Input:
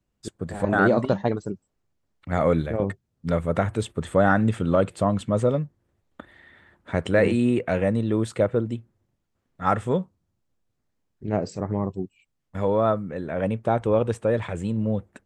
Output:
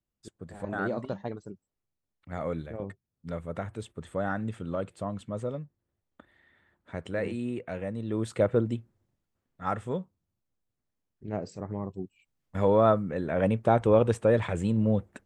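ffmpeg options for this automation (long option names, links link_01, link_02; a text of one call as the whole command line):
ffmpeg -i in.wav -af "volume=7.5dB,afade=type=in:start_time=7.96:duration=0.65:silence=0.281838,afade=type=out:start_time=8.61:duration=1.05:silence=0.421697,afade=type=in:start_time=11.89:duration=0.78:silence=0.375837" out.wav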